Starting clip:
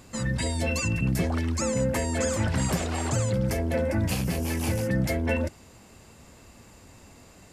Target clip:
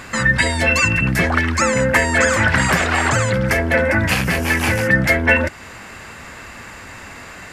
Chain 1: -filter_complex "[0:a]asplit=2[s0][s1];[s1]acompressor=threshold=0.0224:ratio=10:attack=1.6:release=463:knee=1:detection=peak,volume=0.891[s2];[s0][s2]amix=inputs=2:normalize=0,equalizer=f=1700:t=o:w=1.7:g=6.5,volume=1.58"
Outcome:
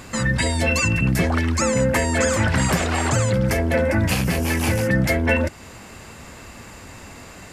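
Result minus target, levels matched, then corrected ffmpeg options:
2 kHz band -4.5 dB
-filter_complex "[0:a]asplit=2[s0][s1];[s1]acompressor=threshold=0.0224:ratio=10:attack=1.6:release=463:knee=1:detection=peak,volume=0.891[s2];[s0][s2]amix=inputs=2:normalize=0,equalizer=f=1700:t=o:w=1.7:g=16.5,volume=1.58"

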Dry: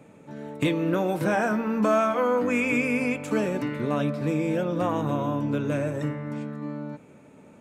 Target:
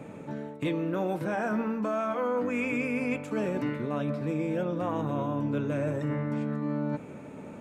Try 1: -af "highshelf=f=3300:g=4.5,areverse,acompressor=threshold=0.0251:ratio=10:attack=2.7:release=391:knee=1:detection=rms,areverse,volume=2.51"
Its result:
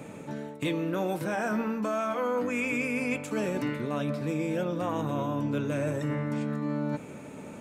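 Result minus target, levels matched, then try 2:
8 kHz band +8.5 dB
-af "highshelf=f=3300:g=-6.5,areverse,acompressor=threshold=0.0251:ratio=10:attack=2.7:release=391:knee=1:detection=rms,areverse,volume=2.51"

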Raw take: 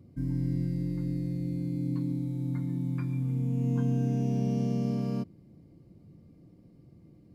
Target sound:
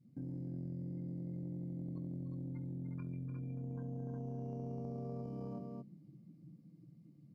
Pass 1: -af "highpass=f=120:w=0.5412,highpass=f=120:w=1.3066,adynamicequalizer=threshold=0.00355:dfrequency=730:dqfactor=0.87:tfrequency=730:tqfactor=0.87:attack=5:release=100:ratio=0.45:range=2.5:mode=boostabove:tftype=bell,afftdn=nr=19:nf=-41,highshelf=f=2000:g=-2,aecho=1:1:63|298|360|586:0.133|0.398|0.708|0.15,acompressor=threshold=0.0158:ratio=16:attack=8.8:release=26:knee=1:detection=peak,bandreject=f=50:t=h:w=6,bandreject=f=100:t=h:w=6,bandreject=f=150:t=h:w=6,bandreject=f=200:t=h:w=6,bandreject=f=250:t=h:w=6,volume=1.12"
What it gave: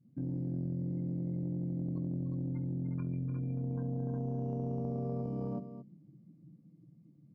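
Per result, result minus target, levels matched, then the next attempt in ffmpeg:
compression: peak gain reduction -7 dB; 2 kHz band -4.5 dB
-af "highpass=f=120:w=0.5412,highpass=f=120:w=1.3066,adynamicequalizer=threshold=0.00355:dfrequency=730:dqfactor=0.87:tfrequency=730:tqfactor=0.87:attack=5:release=100:ratio=0.45:range=2.5:mode=boostabove:tftype=bell,afftdn=nr=19:nf=-41,highshelf=f=2000:g=-2,aecho=1:1:63|298|360|586:0.133|0.398|0.708|0.15,acompressor=threshold=0.00668:ratio=16:attack=8.8:release=26:knee=1:detection=peak,bandreject=f=50:t=h:w=6,bandreject=f=100:t=h:w=6,bandreject=f=150:t=h:w=6,bandreject=f=200:t=h:w=6,bandreject=f=250:t=h:w=6,volume=1.12"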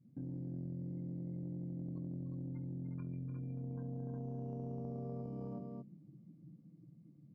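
2 kHz band -4.5 dB
-af "highpass=f=120:w=0.5412,highpass=f=120:w=1.3066,adynamicequalizer=threshold=0.00355:dfrequency=730:dqfactor=0.87:tfrequency=730:tqfactor=0.87:attack=5:release=100:ratio=0.45:range=2.5:mode=boostabove:tftype=bell,afftdn=nr=19:nf=-41,highshelf=f=2000:g=7.5,aecho=1:1:63|298|360|586:0.133|0.398|0.708|0.15,acompressor=threshold=0.00668:ratio=16:attack=8.8:release=26:knee=1:detection=peak,bandreject=f=50:t=h:w=6,bandreject=f=100:t=h:w=6,bandreject=f=150:t=h:w=6,bandreject=f=200:t=h:w=6,bandreject=f=250:t=h:w=6,volume=1.12"

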